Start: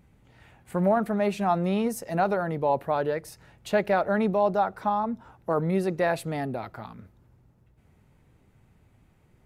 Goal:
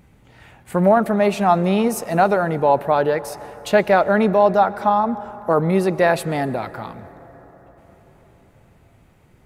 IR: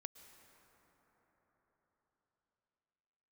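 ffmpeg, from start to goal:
-filter_complex "[0:a]asplit=2[a][b];[1:a]atrim=start_sample=2205,lowshelf=f=190:g=-10.5[c];[b][c]afir=irnorm=-1:irlink=0,volume=2.5dB[d];[a][d]amix=inputs=2:normalize=0,volume=4.5dB"

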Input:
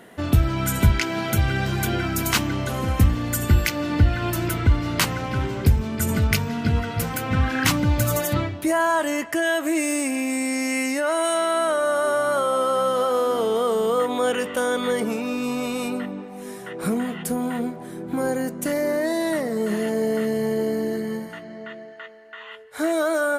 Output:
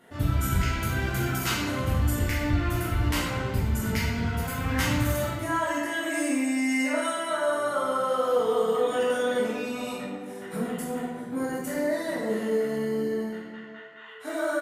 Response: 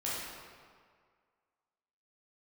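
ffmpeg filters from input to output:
-filter_complex "[0:a]atempo=1.6[a];[1:a]atrim=start_sample=2205,asetrate=66150,aresample=44100[b];[a][b]afir=irnorm=-1:irlink=0,volume=-5.5dB"

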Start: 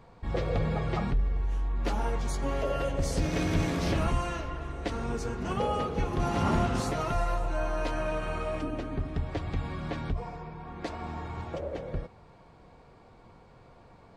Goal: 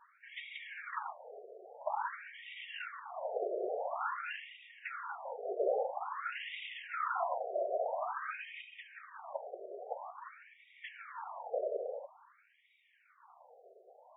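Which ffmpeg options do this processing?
-af "afftfilt=real='hypot(re,im)*cos(2*PI*random(0))':imag='hypot(re,im)*sin(2*PI*random(1))':win_size=512:overlap=0.75,afftfilt=real='re*between(b*sr/1024,510*pow(2700/510,0.5+0.5*sin(2*PI*0.49*pts/sr))/1.41,510*pow(2700/510,0.5+0.5*sin(2*PI*0.49*pts/sr))*1.41)':imag='im*between(b*sr/1024,510*pow(2700/510,0.5+0.5*sin(2*PI*0.49*pts/sr))/1.41,510*pow(2700/510,0.5+0.5*sin(2*PI*0.49*pts/sr))*1.41)':win_size=1024:overlap=0.75,volume=7dB"

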